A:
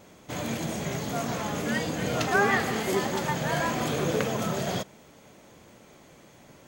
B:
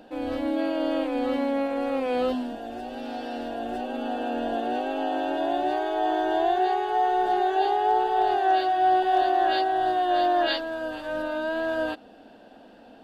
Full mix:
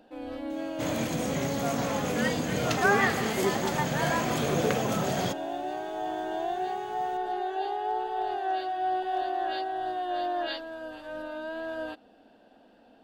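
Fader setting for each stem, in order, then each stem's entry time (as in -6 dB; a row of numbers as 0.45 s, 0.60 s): 0.0 dB, -8.0 dB; 0.50 s, 0.00 s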